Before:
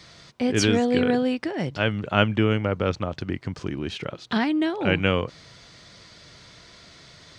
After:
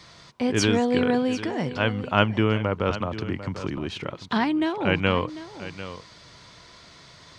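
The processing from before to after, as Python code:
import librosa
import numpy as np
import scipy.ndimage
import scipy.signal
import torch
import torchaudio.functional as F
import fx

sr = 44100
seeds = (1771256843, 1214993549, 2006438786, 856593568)

y = fx.peak_eq(x, sr, hz=1000.0, db=7.0, octaves=0.45)
y = y + 10.0 ** (-14.0 / 20.0) * np.pad(y, (int(746 * sr / 1000.0), 0))[:len(y)]
y = fx.band_squash(y, sr, depth_pct=40, at=(2.9, 3.78))
y = y * librosa.db_to_amplitude(-1.0)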